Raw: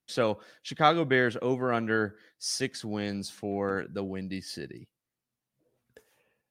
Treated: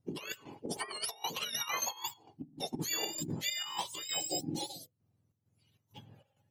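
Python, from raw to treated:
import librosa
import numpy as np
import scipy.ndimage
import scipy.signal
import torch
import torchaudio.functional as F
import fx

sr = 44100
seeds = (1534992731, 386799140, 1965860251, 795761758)

y = fx.octave_mirror(x, sr, pivot_hz=1200.0)
y = fx.chopper(y, sr, hz=2.2, depth_pct=65, duty_pct=70)
y = fx.over_compress(y, sr, threshold_db=-37.0, ratio=-0.5)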